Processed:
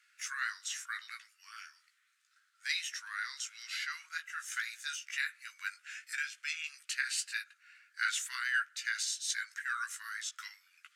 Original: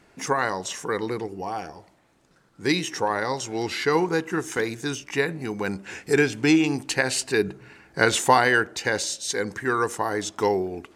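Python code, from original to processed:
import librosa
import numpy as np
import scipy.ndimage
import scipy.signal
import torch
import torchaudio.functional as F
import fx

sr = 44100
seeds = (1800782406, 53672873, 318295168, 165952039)

y = fx.chorus_voices(x, sr, voices=6, hz=1.0, base_ms=16, depth_ms=3.6, mix_pct=35)
y = fx.rider(y, sr, range_db=3, speed_s=0.5)
y = scipy.signal.sosfilt(scipy.signal.butter(12, 1300.0, 'highpass', fs=sr, output='sos'), y)
y = F.gain(torch.from_numpy(y), -6.0).numpy()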